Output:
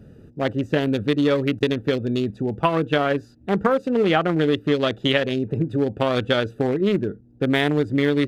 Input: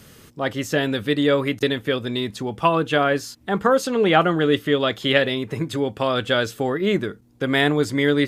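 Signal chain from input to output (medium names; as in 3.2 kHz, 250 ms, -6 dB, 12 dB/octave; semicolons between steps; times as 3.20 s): local Wiener filter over 41 samples; compression, threshold -20 dBFS, peak gain reduction 9 dB; trim +4.5 dB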